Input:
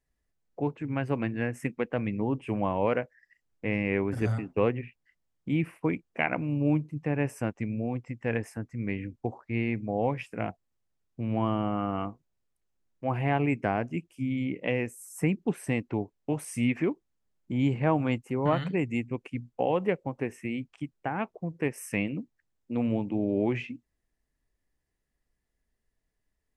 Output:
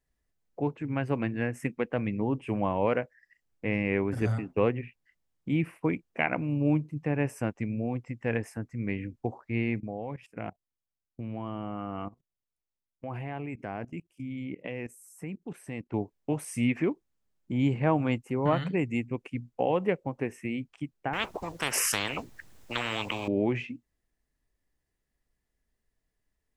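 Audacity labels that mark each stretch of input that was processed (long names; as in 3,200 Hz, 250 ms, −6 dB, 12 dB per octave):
9.800000	15.940000	output level in coarse steps of 18 dB
21.130000	23.280000	every bin compressed towards the loudest bin 10 to 1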